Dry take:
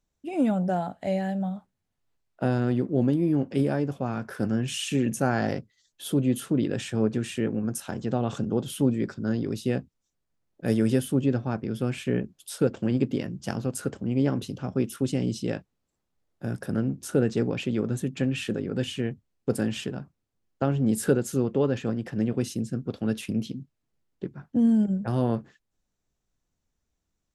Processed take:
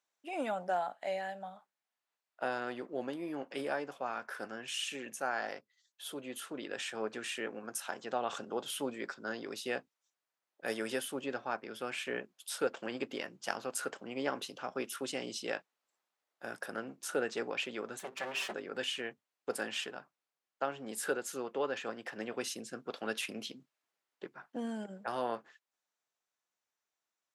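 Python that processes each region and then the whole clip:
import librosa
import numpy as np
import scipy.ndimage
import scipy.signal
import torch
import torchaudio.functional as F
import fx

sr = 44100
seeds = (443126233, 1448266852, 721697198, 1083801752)

y = fx.chain(x, sr, fx.lower_of_two(delay_ms=5.2),
    fx.hum_notches(base_hz=50, count=9), at=(17.99, 18.54))
y = scipy.signal.sosfilt(scipy.signal.butter(2, 840.0, 'highpass', fs=sr, output='sos'), y)
y = fx.high_shelf(y, sr, hz=3700.0, db=-7.0)
y = fx.rider(y, sr, range_db=10, speed_s=2.0)
y = y * librosa.db_to_amplitude(1.5)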